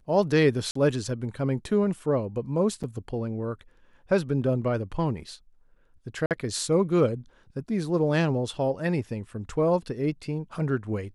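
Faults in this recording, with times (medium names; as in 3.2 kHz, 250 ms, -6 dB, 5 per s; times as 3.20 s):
0.71–0.75 s: dropout 44 ms
2.83–2.84 s: dropout 7 ms
6.26–6.31 s: dropout 48 ms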